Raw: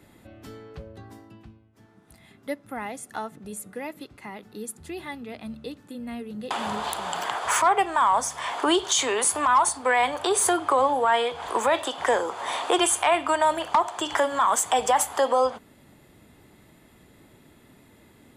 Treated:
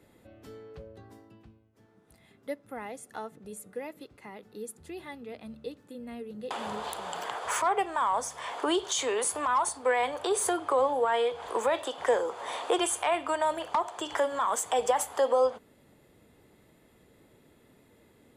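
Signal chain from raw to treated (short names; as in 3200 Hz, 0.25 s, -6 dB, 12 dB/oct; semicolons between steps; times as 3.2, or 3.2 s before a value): bell 480 Hz +7.5 dB 0.53 oct; gain -7.5 dB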